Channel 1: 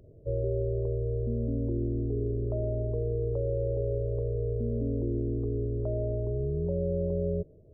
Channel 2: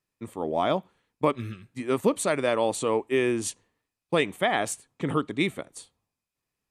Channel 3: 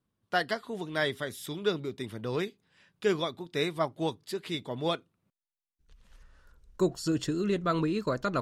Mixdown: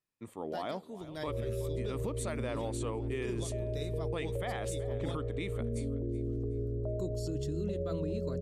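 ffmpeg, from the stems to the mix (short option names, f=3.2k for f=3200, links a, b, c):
-filter_complex "[0:a]adelay=1000,volume=-4dB[a];[1:a]volume=-8dB,asplit=2[b][c];[c]volume=-20.5dB[d];[2:a]equalizer=f=1.5k:w=0.62:g=-12,adelay=200,volume=-6dB[e];[d]aecho=0:1:374|748|1122|1496:1|0.31|0.0961|0.0298[f];[a][b][e][f]amix=inputs=4:normalize=0,alimiter=level_in=2.5dB:limit=-24dB:level=0:latency=1:release=82,volume=-2.5dB"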